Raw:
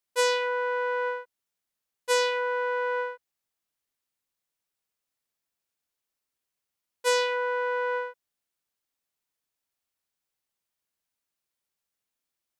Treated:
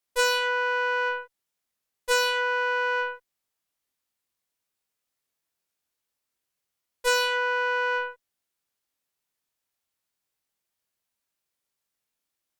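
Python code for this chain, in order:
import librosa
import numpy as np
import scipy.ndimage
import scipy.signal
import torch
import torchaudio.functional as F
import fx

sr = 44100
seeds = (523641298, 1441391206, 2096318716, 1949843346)

y = fx.doubler(x, sr, ms=23.0, db=-5)
y = fx.cheby_harmonics(y, sr, harmonics=(8,), levels_db=(-19,), full_scale_db=-12.5)
y = y * 10.0 ** (1.0 / 20.0)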